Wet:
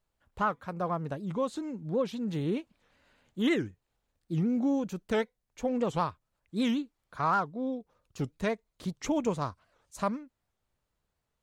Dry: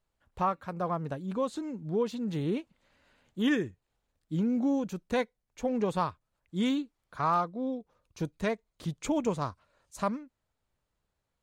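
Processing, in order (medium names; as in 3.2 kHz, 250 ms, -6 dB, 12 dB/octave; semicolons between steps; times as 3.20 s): warped record 78 rpm, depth 250 cents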